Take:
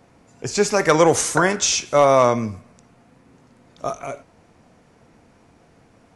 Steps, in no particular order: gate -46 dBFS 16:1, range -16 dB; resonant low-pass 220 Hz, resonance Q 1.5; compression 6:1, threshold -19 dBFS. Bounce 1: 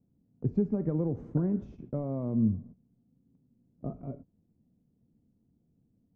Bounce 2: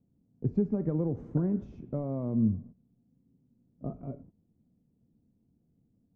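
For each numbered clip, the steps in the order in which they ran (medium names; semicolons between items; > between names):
compression > resonant low-pass > gate; gate > compression > resonant low-pass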